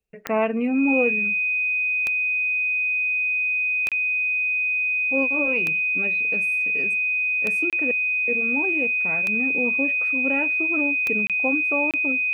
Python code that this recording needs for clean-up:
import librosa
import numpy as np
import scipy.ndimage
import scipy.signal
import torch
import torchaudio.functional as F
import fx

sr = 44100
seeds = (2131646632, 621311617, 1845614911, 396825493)

y = fx.fix_declick_ar(x, sr, threshold=10.0)
y = fx.notch(y, sr, hz=2500.0, q=30.0)
y = fx.fix_interpolate(y, sr, at_s=(3.89, 7.7, 11.27, 11.91), length_ms=27.0)